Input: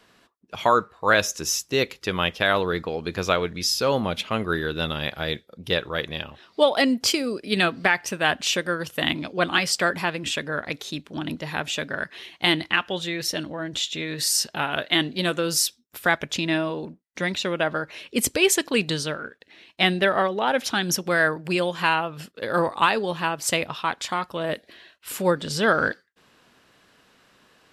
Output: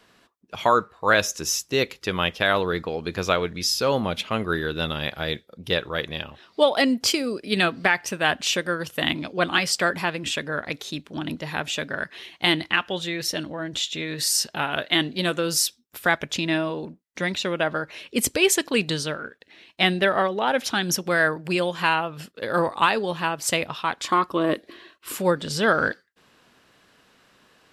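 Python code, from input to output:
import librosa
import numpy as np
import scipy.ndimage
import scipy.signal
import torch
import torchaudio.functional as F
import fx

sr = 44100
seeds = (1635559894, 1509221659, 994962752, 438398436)

y = fx.small_body(x, sr, hz=(330.0, 1100.0), ring_ms=25, db=12, at=(24.03, 25.15))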